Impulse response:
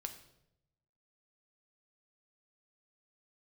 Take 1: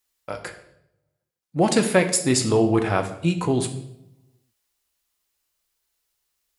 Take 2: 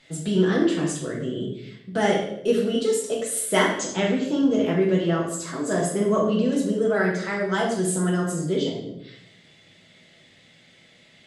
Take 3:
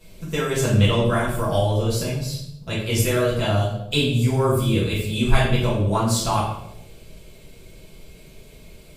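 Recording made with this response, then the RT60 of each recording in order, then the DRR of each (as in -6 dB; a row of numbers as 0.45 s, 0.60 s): 1; 0.80 s, 0.80 s, 0.80 s; 6.0 dB, -4.0 dB, -9.0 dB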